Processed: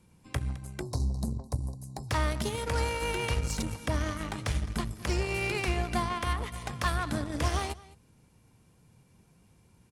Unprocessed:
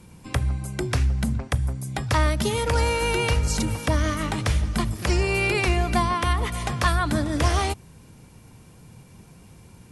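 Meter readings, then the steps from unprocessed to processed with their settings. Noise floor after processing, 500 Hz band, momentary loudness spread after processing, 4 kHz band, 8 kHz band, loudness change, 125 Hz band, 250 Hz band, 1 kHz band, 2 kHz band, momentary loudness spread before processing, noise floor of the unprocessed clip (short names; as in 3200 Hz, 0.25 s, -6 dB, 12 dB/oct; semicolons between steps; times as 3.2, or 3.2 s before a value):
-63 dBFS, -8.0 dB, 7 LU, -7.5 dB, -7.5 dB, -8.0 dB, -8.5 dB, -8.0 dB, -8.0 dB, -8.0 dB, 6 LU, -49 dBFS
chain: echo 0.212 s -16 dB; spectral delete 0.82–2.1, 1100–3800 Hz; added harmonics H 7 -23 dB, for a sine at -10 dBFS; gain -7.5 dB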